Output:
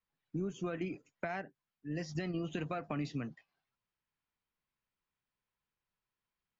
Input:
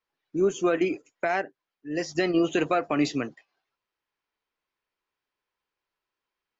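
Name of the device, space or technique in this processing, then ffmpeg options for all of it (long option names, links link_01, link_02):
jukebox: -af "lowpass=5700,lowshelf=frequency=250:width_type=q:width=1.5:gain=9.5,acompressor=threshold=-28dB:ratio=5,volume=-6.5dB"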